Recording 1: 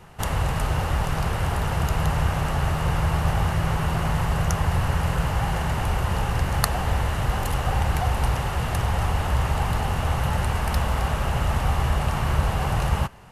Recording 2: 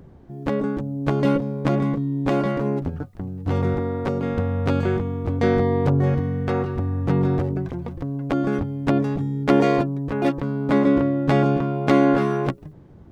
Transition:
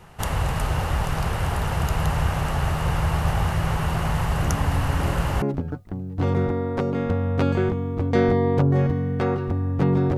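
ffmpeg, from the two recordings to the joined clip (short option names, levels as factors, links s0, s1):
-filter_complex "[1:a]asplit=2[s0][s1];[0:a]apad=whole_dur=10.17,atrim=end=10.17,atrim=end=5.422[s2];[s1]atrim=start=2.698:end=7.45[s3];[s0]atrim=start=1.7:end=2.7,asetpts=PTS-STARTPTS,volume=0.251,afade=t=in:d=0.004:c=hsin,afade=t=out:st=0.996:d=0.004:c=hsin,adelay=4420[s4];[s2][s3]acrossfade=d=0.004:c1=hsin:c2=hsin[s5];[s5][s4]amix=inputs=2:normalize=0"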